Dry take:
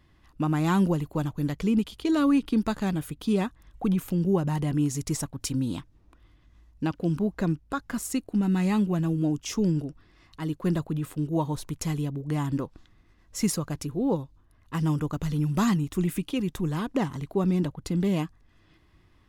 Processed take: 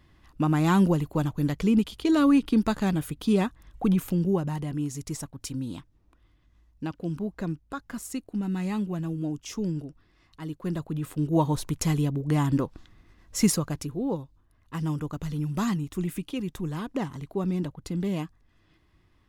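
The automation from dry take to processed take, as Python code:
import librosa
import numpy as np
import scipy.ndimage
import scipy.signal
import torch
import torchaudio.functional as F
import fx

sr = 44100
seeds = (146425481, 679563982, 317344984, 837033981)

y = fx.gain(x, sr, db=fx.line((4.04, 2.0), (4.68, -5.0), (10.68, -5.0), (11.4, 4.0), (13.46, 4.0), (14.09, -3.5)))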